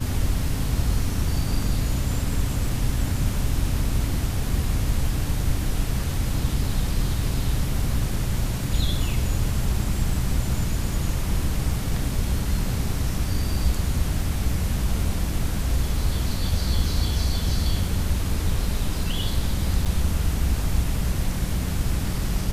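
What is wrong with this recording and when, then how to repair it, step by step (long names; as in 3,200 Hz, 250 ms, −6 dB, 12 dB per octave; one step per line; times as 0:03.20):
0:19.85–0:19.86: drop-out 6.9 ms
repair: repair the gap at 0:19.85, 6.9 ms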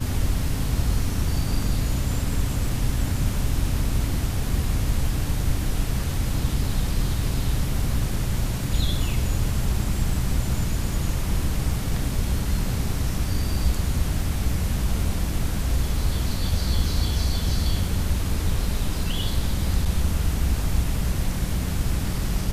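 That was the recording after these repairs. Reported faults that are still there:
none of them is left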